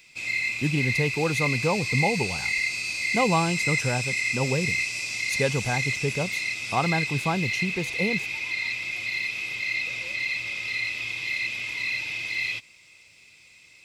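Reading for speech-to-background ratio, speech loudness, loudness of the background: -1.5 dB, -28.0 LUFS, -26.5 LUFS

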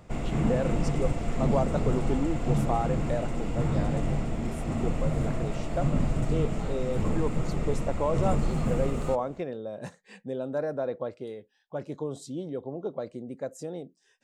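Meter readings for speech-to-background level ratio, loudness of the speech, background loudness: -4.0 dB, -34.0 LUFS, -30.0 LUFS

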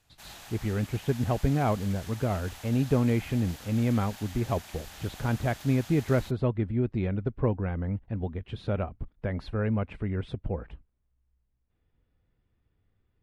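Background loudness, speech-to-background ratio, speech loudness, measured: -45.5 LUFS, 16.0 dB, -29.5 LUFS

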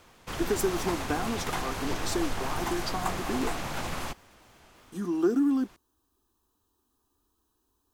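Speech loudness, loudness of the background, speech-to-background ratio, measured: -31.0 LUFS, -34.0 LUFS, 3.0 dB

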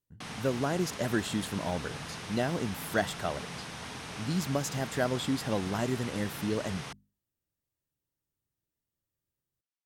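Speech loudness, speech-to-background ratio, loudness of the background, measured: -33.0 LUFS, 7.5 dB, -40.5 LUFS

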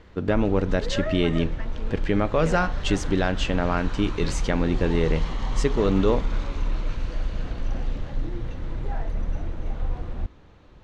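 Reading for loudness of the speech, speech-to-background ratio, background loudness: -25.0 LUFS, 7.0 dB, -32.0 LUFS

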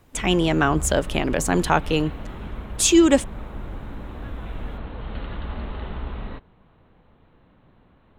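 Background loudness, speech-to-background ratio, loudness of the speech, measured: -35.0 LUFS, 14.5 dB, -20.5 LUFS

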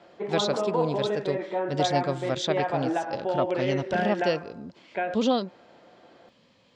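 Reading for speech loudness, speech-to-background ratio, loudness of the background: -29.5 LUFS, 0.0 dB, -29.5 LUFS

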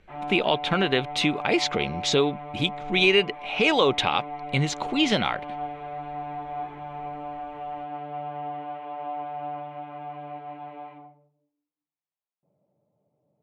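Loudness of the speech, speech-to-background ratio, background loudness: -23.5 LUFS, 12.0 dB, -35.5 LUFS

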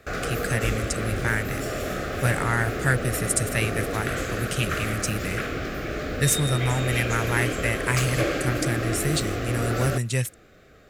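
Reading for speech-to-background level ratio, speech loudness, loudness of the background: 2.5 dB, -26.5 LUFS, -29.0 LUFS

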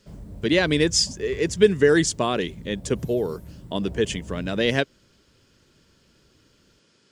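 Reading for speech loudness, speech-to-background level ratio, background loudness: -23.0 LUFS, 18.5 dB, -41.5 LUFS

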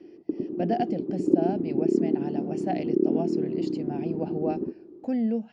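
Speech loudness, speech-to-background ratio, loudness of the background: -33.0 LUFS, -5.0 dB, -28.0 LUFS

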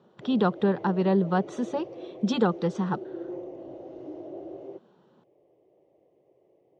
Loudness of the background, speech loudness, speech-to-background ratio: -41.0 LUFS, -27.0 LUFS, 14.0 dB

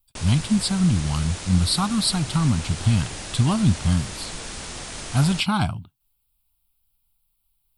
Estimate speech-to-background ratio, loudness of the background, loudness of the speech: 11.0 dB, -33.5 LUFS, -22.5 LUFS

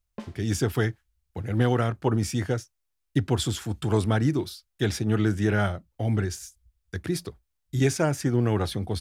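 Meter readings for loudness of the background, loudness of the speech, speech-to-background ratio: -45.0 LUFS, -26.5 LUFS, 18.5 dB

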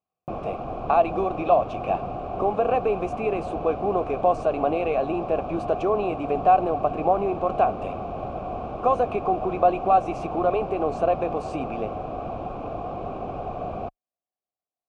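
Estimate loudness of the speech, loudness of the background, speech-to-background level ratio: -24.5 LUFS, -32.5 LUFS, 8.0 dB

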